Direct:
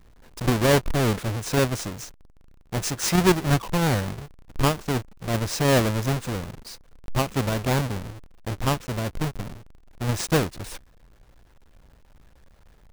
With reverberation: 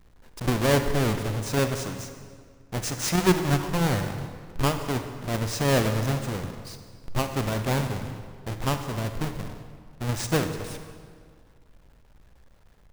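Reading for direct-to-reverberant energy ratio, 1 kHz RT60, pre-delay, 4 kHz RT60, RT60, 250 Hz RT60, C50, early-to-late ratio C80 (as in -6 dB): 7.0 dB, 1.9 s, 37 ms, 1.4 s, 1.9 s, 2.1 s, 7.5 dB, 8.5 dB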